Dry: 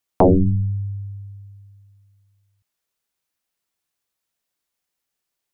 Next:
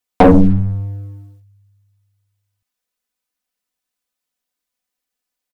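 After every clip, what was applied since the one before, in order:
comb filter 4 ms, depth 97%
leveller curve on the samples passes 2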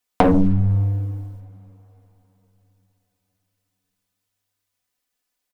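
downward compressor 6 to 1, threshold −16 dBFS, peak gain reduction 10.5 dB
coupled-rooms reverb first 0.2 s, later 4.2 s, from −21 dB, DRR 15 dB
level +2.5 dB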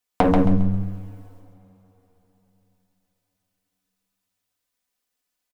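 repeating echo 135 ms, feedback 30%, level −4 dB
level −3 dB

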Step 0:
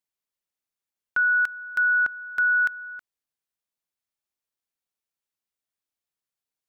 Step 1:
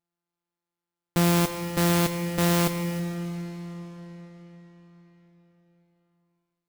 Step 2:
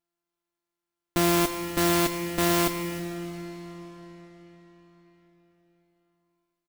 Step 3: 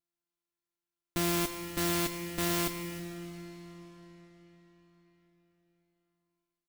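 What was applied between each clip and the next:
samples sorted by size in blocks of 256 samples; noise that follows the level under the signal 12 dB; comb and all-pass reverb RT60 4.7 s, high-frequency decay 0.9×, pre-delay 10 ms, DRR 8 dB
comb filter 3 ms, depth 57%
parametric band 660 Hz −5.5 dB 2.4 octaves; level −5 dB

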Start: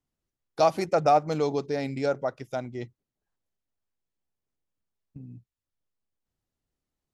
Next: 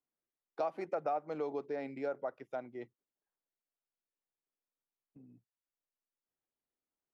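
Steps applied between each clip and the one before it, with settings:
three-way crossover with the lows and the highs turned down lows −17 dB, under 250 Hz, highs −19 dB, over 2,600 Hz
downward compressor 3 to 1, threshold −27 dBFS, peak gain reduction 8.5 dB
level −6.5 dB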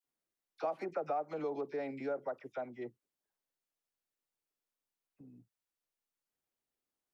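in parallel at −2 dB: brickwall limiter −33.5 dBFS, peak gain reduction 10 dB
on the sum: all-pass dispersion lows, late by 43 ms, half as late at 1,300 Hz
level −3.5 dB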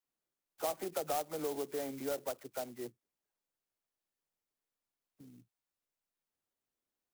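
converter with an unsteady clock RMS 0.088 ms

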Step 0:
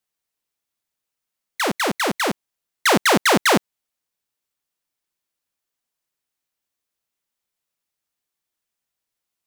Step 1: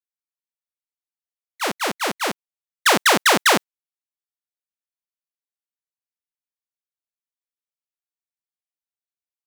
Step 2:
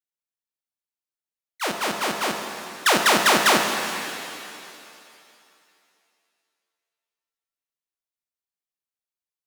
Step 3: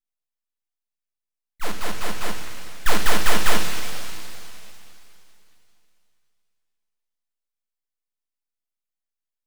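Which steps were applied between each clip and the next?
noise gate −21 dBFS, range −21 dB; low-shelf EQ 490 Hz −10 dB; level +3 dB
reverb with rising layers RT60 2.6 s, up +7 semitones, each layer −8 dB, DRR 3.5 dB; level −3 dB
full-wave rectification; on a send at −8.5 dB: convolution reverb RT60 0.25 s, pre-delay 4 ms; on the sum: level −2 dB

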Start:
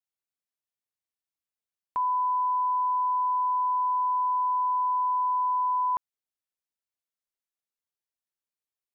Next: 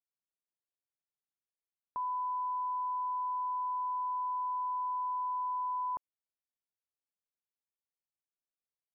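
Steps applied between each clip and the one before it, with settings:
low-pass filter 1,100 Hz 12 dB per octave
level −6.5 dB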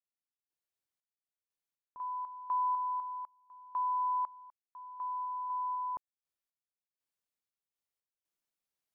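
sample-and-hold tremolo 4 Hz, depth 100%
level +5 dB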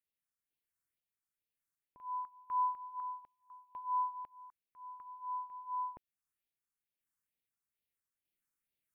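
all-pass phaser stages 4, 2.2 Hz, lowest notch 560–1,200 Hz
level +2.5 dB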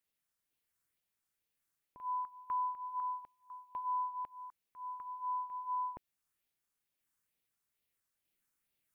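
downward compressor 4 to 1, threshold −40 dBFS, peak gain reduction 9.5 dB
level +5.5 dB

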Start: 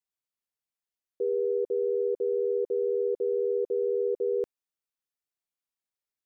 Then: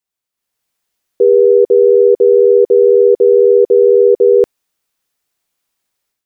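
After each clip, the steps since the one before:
automatic gain control gain up to 11.5 dB
level +8 dB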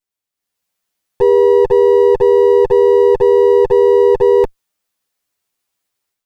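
lower of the sound and its delayed copy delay 10 ms
level −1 dB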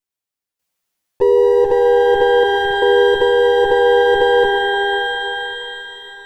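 time-frequency box erased 0:02.44–0:02.82, 280–2,000 Hz
output level in coarse steps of 11 dB
reverb with rising layers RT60 3.9 s, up +12 semitones, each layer −8 dB, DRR 5 dB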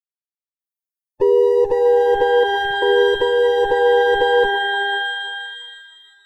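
spectral dynamics exaggerated over time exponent 2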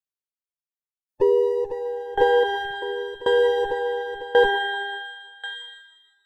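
tremolo with a ramp in dB decaying 0.92 Hz, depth 20 dB

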